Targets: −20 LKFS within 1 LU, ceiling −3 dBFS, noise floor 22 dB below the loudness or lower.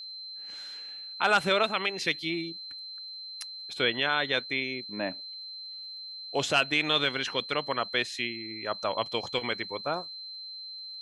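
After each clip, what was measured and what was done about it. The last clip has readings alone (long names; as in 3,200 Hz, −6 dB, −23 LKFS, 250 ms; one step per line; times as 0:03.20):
crackle rate 20 per second; interfering tone 4,100 Hz; level of the tone −39 dBFS; integrated loudness −30.0 LKFS; sample peak −9.5 dBFS; target loudness −20.0 LKFS
→ click removal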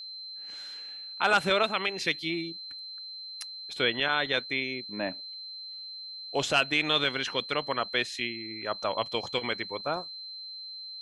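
crackle rate 0 per second; interfering tone 4,100 Hz; level of the tone −39 dBFS
→ notch filter 4,100 Hz, Q 30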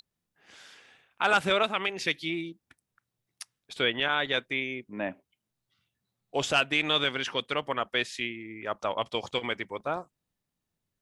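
interfering tone none found; integrated loudness −29.0 LKFS; sample peak −9.5 dBFS; target loudness −20.0 LKFS
→ level +9 dB
brickwall limiter −3 dBFS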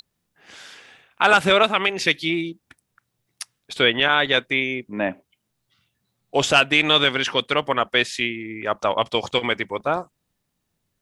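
integrated loudness −20.0 LKFS; sample peak −3.0 dBFS; background noise floor −76 dBFS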